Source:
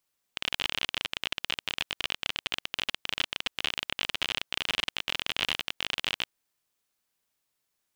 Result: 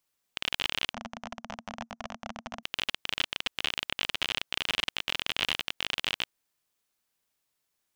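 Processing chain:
0:00.93–0:02.63: drawn EQ curve 160 Hz 0 dB, 230 Hz +14 dB, 330 Hz −18 dB, 680 Hz +7 dB, 1,400 Hz −3 dB, 2,800 Hz −18 dB, 4,100 Hz −19 dB, 6,000 Hz −5 dB, 11,000 Hz −29 dB

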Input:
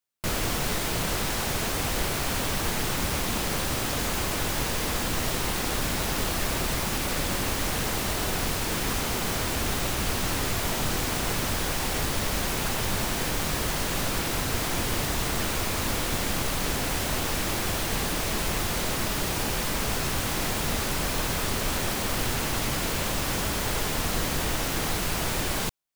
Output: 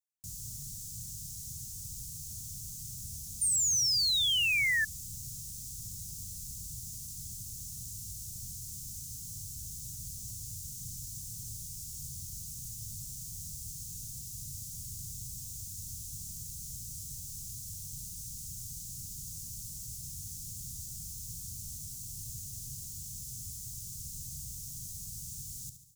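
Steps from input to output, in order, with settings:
low-shelf EQ 280 Hz −6 dB
reversed playback
upward compression, threshold −34 dBFS
reversed playback
elliptic band-stop filter 130–6,500 Hz, stop band 70 dB
high-shelf EQ 7,800 Hz −6 dB
on a send: repeating echo 71 ms, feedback 54%, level −10.5 dB
on the sum: sound drawn into the spectrogram fall, 0:03.41–0:04.85, 1,700–9,200 Hz −23 dBFS
high-pass filter 81 Hz 6 dB per octave
level −5 dB

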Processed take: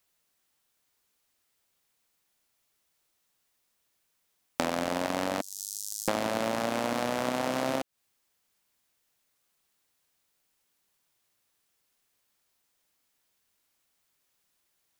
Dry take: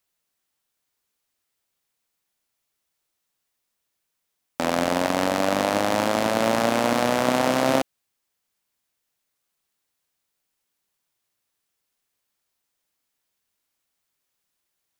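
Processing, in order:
0:05.41–0:06.08: inverse Chebyshev high-pass filter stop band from 2,400 Hz, stop band 50 dB
downward compressor 16 to 1, threshold −27 dBFS, peak gain reduction 13.5 dB
level +3 dB

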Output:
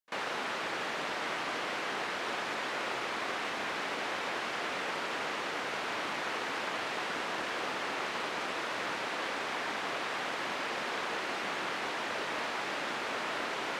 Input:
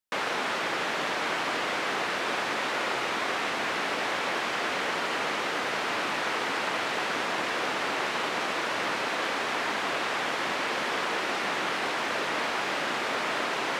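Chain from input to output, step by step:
echo ahead of the sound 41 ms −22 dB
highs frequency-modulated by the lows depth 0.24 ms
level −6 dB

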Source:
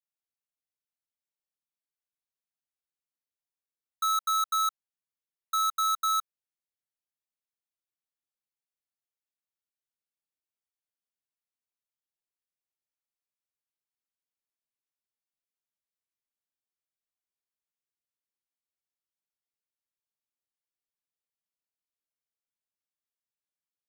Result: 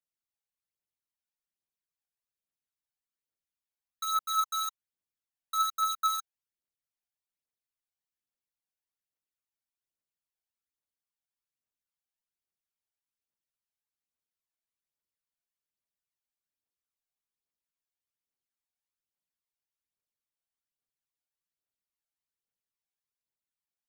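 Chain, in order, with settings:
phase shifter 1.2 Hz, delay 1.4 ms, feedback 56%
level −4.5 dB

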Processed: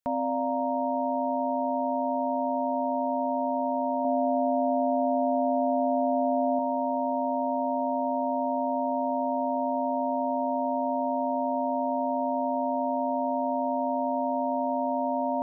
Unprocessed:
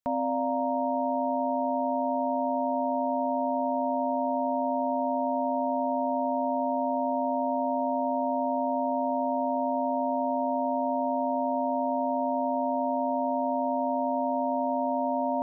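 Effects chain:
0:04.04–0:06.59: comb filter 7.1 ms, depth 60%

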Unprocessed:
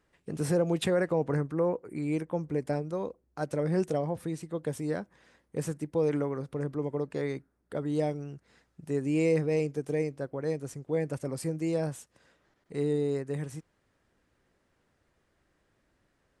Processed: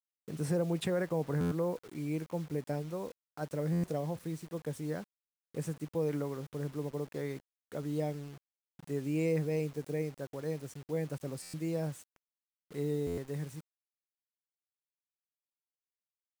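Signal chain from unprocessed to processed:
dynamic equaliser 160 Hz, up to +4 dB, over −41 dBFS, Q 2.8
bit reduction 8 bits
buffer that repeats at 0:01.40/0:03.72/0:05.10/0:08.50/0:11.42/0:13.06, samples 512, times 9
level −6 dB

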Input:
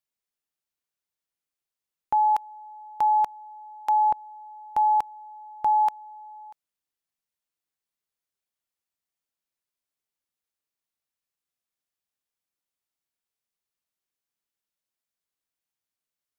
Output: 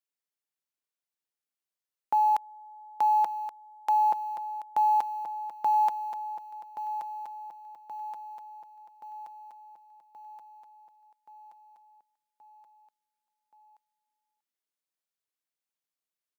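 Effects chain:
high-pass filter 220 Hz 12 dB per octave
in parallel at −11 dB: bit reduction 6 bits
on the sum: repeating echo 1,126 ms, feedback 59%, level −10 dB
level −4.5 dB

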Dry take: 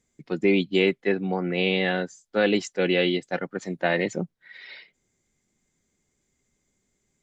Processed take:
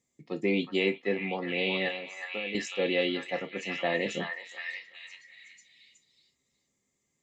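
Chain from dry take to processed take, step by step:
high-pass filter 130 Hz 6 dB per octave
0:01.88–0:02.55: downward compressor 4 to 1, threshold −33 dBFS, peak gain reduction 14 dB
Butterworth band-reject 1,500 Hz, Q 4.9
on a send: echo through a band-pass that steps 369 ms, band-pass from 1,300 Hz, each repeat 0.7 octaves, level −0.5 dB
on the sum: reverb whose tail is shaped and stops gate 80 ms falling, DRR 6.5 dB
level −5.5 dB

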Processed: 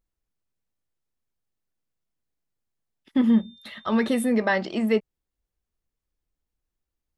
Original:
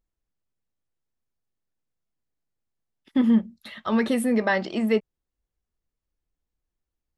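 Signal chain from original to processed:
0:03.27–0:04.28: steady tone 3,600 Hz −51 dBFS

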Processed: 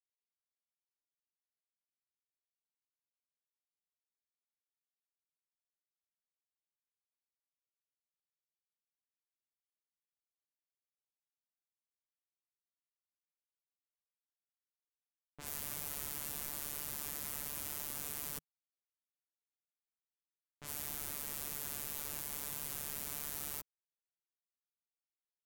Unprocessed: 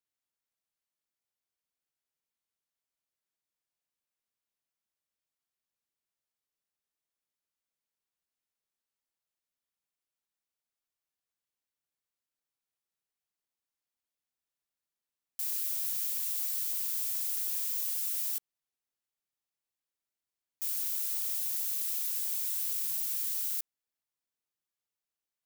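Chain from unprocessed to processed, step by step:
phases set to zero 145 Hz
automatic gain control gain up to 13 dB
low-pass that shuts in the quiet parts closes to 1,100 Hz, open at −26.5 dBFS
bit reduction 8 bits
drawn EQ curve 160 Hz 0 dB, 1,100 Hz −13 dB, 4,400 Hz −29 dB
level +15.5 dB

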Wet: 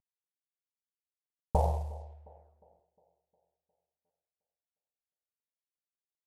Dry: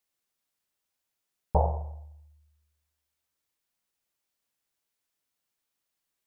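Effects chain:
variable-slope delta modulation 64 kbit/s
brickwall limiter −16.5 dBFS, peak gain reduction 5.5 dB
delay with a band-pass on its return 357 ms, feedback 49%, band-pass 440 Hz, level −19 dB
low-pass that shuts in the quiet parts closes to 700 Hz, open at −32.5 dBFS
buffer that repeats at 0:04.05, samples 512, times 3

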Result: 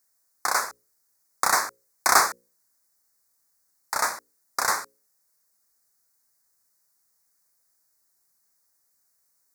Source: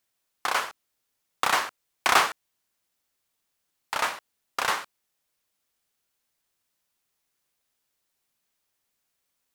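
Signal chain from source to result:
Butterworth band-reject 3,000 Hz, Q 1
high-shelf EQ 2,200 Hz +9.5 dB
mains-hum notches 60/120/180/240/300/360/420/480/540 Hz

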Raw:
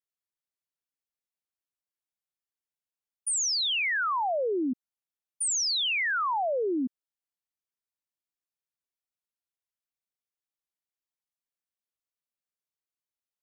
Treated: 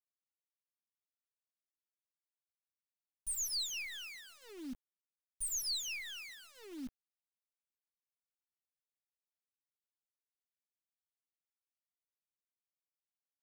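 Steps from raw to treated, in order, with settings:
lower of the sound and its delayed copy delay 0.46 ms
Chebyshev band-stop filter 190–3,400 Hz, order 2
bit reduction 8 bits
level −7.5 dB

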